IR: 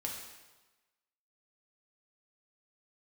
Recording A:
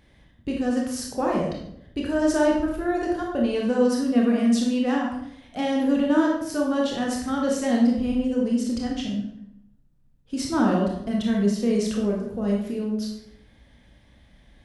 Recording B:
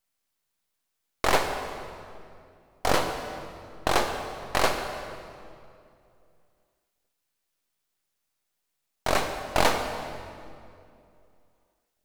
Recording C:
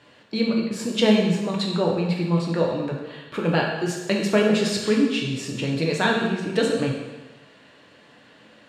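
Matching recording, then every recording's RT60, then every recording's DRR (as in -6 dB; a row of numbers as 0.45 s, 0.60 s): C; 0.70 s, 2.5 s, 1.2 s; -1.5 dB, 5.0 dB, -1.5 dB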